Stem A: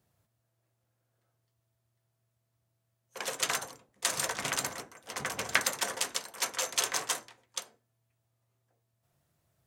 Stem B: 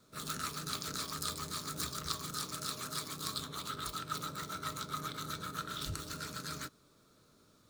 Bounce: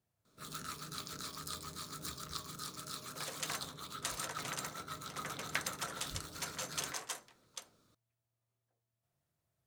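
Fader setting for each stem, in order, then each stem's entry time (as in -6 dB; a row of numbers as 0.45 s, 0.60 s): -10.0 dB, -5.5 dB; 0.00 s, 0.25 s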